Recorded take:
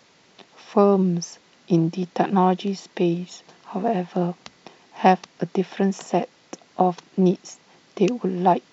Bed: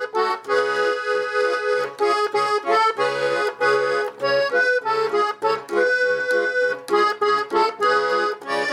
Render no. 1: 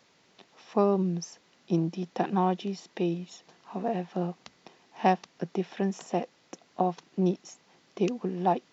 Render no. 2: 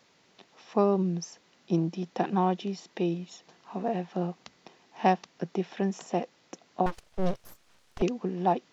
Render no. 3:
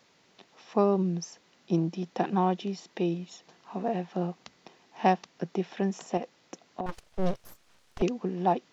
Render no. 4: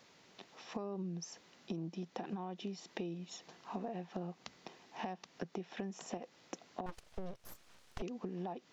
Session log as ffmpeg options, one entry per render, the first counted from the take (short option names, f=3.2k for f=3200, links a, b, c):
-af "volume=-7.5dB"
-filter_complex "[0:a]asettb=1/sr,asplit=3[a][b][c];[a]atrim=end=6.864[d];[b]atrim=start=6.86:end=8.02,asetpts=PTS-STARTPTS,afade=t=in:d=0.004:c=qsin,afade=t=out:st=1.156:d=0.004:c=qsin,aeval=exprs='abs(val(0))':c=same[e];[c]atrim=start=8.016[f];[d][e]acrossfade=d=0.004:c1=hsin:c2=qsin[g];[g][f]acrossfade=d=0.004:c1=qsin:c2=hsin"
-filter_complex "[0:a]asettb=1/sr,asplit=3[a][b][c];[a]atrim=end=6.174[d];[b]atrim=start=6.17:end=6.89,asetpts=PTS-STARTPTS,afade=t=in:d=0.004:c=qsin,afade=t=out:st=0.716:d=0.004:c=qsin,acompressor=threshold=-29dB:ratio=6:attack=3.2:release=140:knee=1:detection=peak[e];[c]atrim=start=6.886[f];[d][e]acrossfade=d=0.004:c1=hsin:c2=qsin[g];[g][f]acrossfade=d=0.004:c1=qsin:c2=hsin"
-af "alimiter=limit=-21.5dB:level=0:latency=1:release=118,acompressor=threshold=-38dB:ratio=12"